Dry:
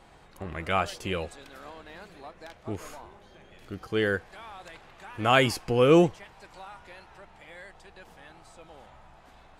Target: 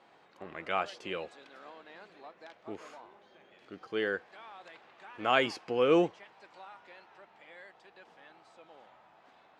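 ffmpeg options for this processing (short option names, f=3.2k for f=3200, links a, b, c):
-af "highpass=270,lowpass=4.6k,volume=-5dB"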